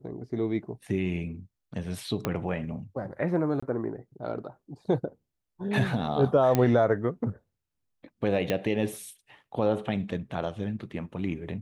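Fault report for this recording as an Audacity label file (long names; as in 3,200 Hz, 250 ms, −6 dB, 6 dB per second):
2.250000	2.250000	click −13 dBFS
3.600000	3.620000	drop-out 25 ms
6.550000	6.550000	click −10 dBFS
8.500000	8.500000	click −14 dBFS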